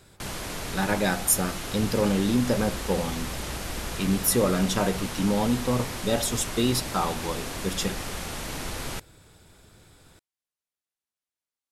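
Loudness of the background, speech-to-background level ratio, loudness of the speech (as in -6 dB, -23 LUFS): -33.5 LUFS, 7.0 dB, -26.5 LUFS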